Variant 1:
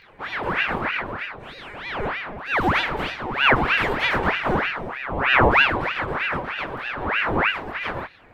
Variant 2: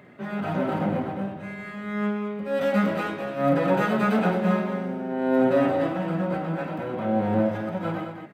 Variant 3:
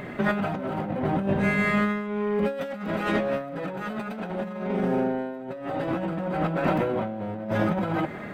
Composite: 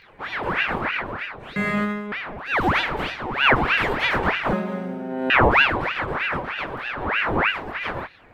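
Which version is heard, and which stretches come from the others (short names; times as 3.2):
1
1.56–2.12 from 3
4.53–5.3 from 2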